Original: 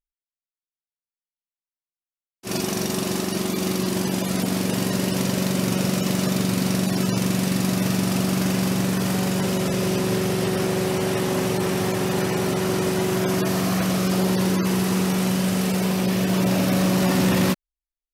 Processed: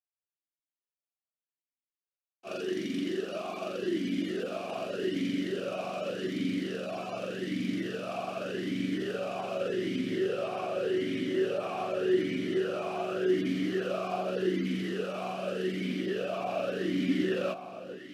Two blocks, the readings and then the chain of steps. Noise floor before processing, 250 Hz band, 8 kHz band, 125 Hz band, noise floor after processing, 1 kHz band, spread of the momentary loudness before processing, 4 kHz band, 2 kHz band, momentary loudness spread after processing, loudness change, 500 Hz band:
below −85 dBFS, −10.5 dB, −24.5 dB, −18.0 dB, below −85 dBFS, −8.5 dB, 4 LU, −12.0 dB, −9.5 dB, 7 LU, −10.0 dB, −5.5 dB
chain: brickwall limiter −15 dBFS, peak gain reduction 3 dB
delay that swaps between a low-pass and a high-pass 445 ms, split 1,100 Hz, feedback 72%, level −10 dB
formant filter swept between two vowels a-i 0.85 Hz
level +4.5 dB

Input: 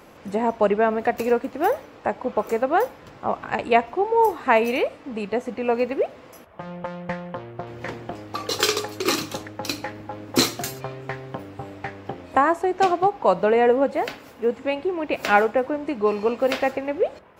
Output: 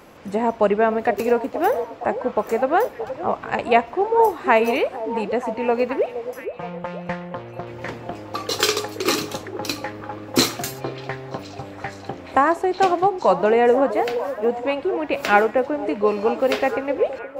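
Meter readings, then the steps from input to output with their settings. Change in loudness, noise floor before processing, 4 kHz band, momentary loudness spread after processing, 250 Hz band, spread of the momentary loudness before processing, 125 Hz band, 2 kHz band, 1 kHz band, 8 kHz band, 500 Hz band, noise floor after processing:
+2.0 dB, −46 dBFS, +1.5 dB, 14 LU, +1.5 dB, 15 LU, +1.5 dB, +1.5 dB, +2.0 dB, +1.5 dB, +2.0 dB, −39 dBFS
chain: echo through a band-pass that steps 470 ms, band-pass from 460 Hz, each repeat 0.7 octaves, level −8.5 dB
level +1.5 dB

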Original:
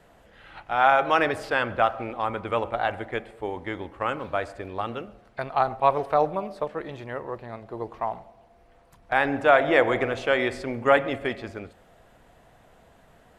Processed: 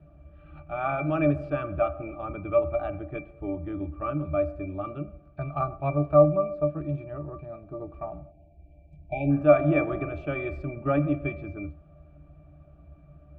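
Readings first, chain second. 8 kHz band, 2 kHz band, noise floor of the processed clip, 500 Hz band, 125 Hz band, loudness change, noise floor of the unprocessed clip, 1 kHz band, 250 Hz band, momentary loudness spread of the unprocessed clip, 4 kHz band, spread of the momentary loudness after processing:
can't be measured, −11.5 dB, −54 dBFS, −0.5 dB, +9.0 dB, −2.0 dB, −57 dBFS, −9.0 dB, +4.0 dB, 16 LU, below −20 dB, 18 LU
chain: low-shelf EQ 190 Hz +11 dB
resonances in every octave D, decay 0.16 s
time-frequency box erased 0:08.31–0:09.30, 890–2,200 Hz
level +9 dB

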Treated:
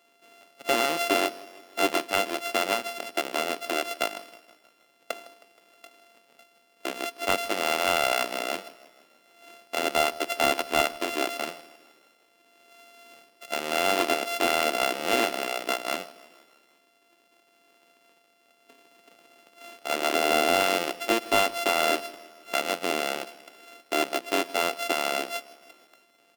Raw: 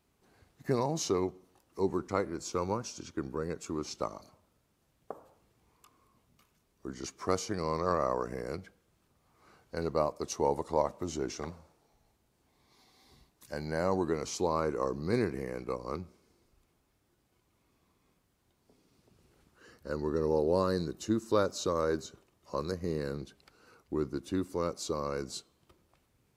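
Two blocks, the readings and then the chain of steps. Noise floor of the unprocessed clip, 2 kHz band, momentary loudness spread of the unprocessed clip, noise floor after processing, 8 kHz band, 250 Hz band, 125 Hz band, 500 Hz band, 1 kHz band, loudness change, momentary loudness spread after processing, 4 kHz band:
−74 dBFS, +18.0 dB, 13 LU, −64 dBFS, +8.5 dB, +0.5 dB, −12.0 dB, +3.5 dB, +9.0 dB, +7.0 dB, 13 LU, +16.5 dB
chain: samples sorted by size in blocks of 64 samples
high-pass filter 280 Hz 24 dB per octave
parametric band 2,800 Hz +7.5 dB 0.57 octaves
in parallel at +1 dB: downward compressor 5 to 1, threshold −40 dBFS, peak gain reduction 18 dB
on the sum: gain into a clipping stage and back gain 13.5 dB
on a send: repeating echo 158 ms, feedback 59%, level −20 dB
on the sum: level +4 dB

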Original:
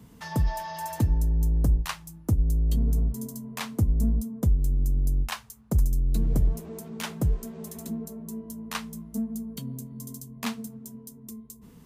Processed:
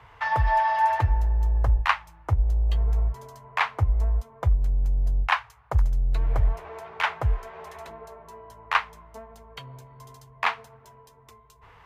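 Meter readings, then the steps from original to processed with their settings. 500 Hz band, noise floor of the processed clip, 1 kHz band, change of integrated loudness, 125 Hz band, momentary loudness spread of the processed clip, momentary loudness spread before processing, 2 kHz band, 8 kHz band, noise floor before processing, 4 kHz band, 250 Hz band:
+3.0 dB, −54 dBFS, +14.0 dB, +3.0 dB, 0.0 dB, 20 LU, 14 LU, +12.5 dB, −12.0 dB, −51 dBFS, +3.5 dB, −16.5 dB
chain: drawn EQ curve 110 Hz 0 dB, 220 Hz −28 dB, 330 Hz −9 dB, 840 Hz +13 dB, 2,200 Hz +12 dB, 8,200 Hz −16 dB, 14,000 Hz −20 dB
level +1 dB

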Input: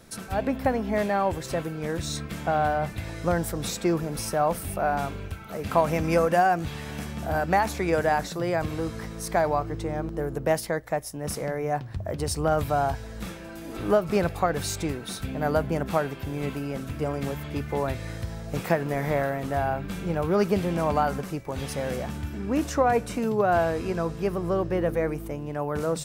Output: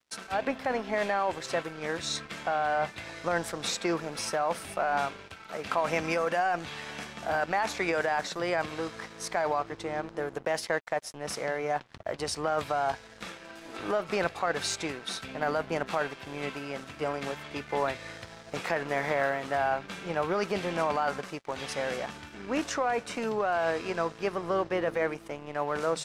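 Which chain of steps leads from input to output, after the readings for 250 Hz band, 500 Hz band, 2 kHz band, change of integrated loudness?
−8.0 dB, −4.5 dB, +0.5 dB, −4.0 dB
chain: high-pass filter 1,000 Hz 6 dB per octave
in parallel at +2.5 dB: compressor whose output falls as the input rises −31 dBFS, ratio −0.5
on the sum: dead-zone distortion −42 dBFS
high-frequency loss of the air 74 metres
level −2.5 dB

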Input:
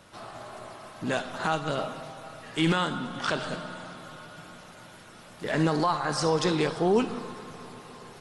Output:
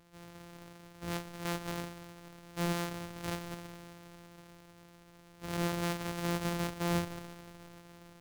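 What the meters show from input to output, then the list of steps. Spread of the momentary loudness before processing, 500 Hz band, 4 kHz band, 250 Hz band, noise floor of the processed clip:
20 LU, −12.0 dB, −9.5 dB, −8.0 dB, −58 dBFS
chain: samples sorted by size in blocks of 256 samples
level −9 dB

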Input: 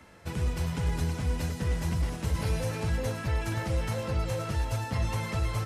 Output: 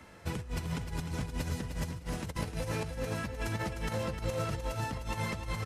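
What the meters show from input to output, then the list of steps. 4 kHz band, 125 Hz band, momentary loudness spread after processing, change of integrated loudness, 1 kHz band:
−3.0 dB, −7.0 dB, 3 LU, −5.5 dB, −2.0 dB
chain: compressor whose output falls as the input rises −32 dBFS, ratio −0.5
on a send: repeating echo 305 ms, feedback 21%, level −8 dB
on the sum: level −3 dB

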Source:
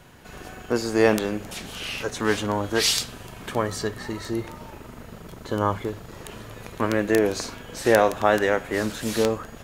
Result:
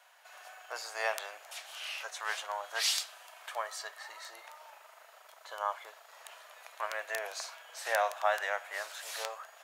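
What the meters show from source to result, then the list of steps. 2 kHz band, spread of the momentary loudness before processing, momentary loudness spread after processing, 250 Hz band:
−7.5 dB, 20 LU, 21 LU, below −40 dB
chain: elliptic high-pass filter 640 Hz, stop band 70 dB
level −7.5 dB

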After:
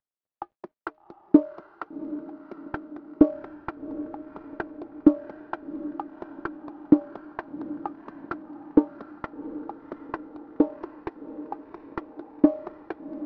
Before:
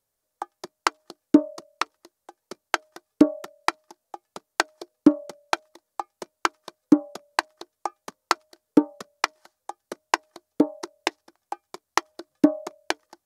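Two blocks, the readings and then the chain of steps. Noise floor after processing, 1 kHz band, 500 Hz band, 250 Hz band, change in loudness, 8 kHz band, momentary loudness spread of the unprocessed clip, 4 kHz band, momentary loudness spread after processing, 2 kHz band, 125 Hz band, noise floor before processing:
−76 dBFS, −9.0 dB, −1.5 dB, −0.5 dB, −2.5 dB, below −40 dB, 19 LU, below −25 dB, 19 LU, −12.5 dB, +1.0 dB, −81 dBFS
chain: variable-slope delta modulation 32 kbit/s
noise gate −46 dBFS, range −9 dB
Bessel low-pass filter 990 Hz, order 2
feedback delay with all-pass diffusion 759 ms, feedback 59%, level −13.5 dB

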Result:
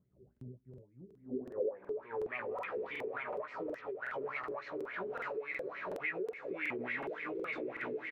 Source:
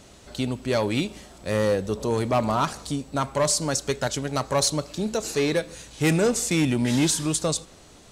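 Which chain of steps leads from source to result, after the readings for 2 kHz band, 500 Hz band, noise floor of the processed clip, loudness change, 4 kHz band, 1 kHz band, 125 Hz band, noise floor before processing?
−6.5 dB, −13.0 dB, −68 dBFS, −15.0 dB, −28.0 dB, −14.5 dB, −28.0 dB, −50 dBFS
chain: in parallel at +1 dB: output level in coarse steps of 18 dB
on the sum: low-shelf EQ 280 Hz +9 dB
on a send: feedback delay with all-pass diffusion 937 ms, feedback 60%, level −6.5 dB
on the sum: LFO wah 3.5 Hz 390–2,200 Hz, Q 10
downward compressor 6 to 1, threshold −43 dBFS, peak gain reduction 23 dB
graphic EQ with 15 bands 400 Hz +9 dB, 1,600 Hz +3 dB, 10,000 Hz −5 dB
brickwall limiter −37.5 dBFS, peak gain reduction 11 dB
double-tracking delay 16 ms −5 dB
low-pass filter sweep 140 Hz → 2,500 Hz, 0:01.05–0:02.27
regular buffer underruns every 0.37 s, samples 2,048, repeat, from 0:00.32
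level +3.5 dB

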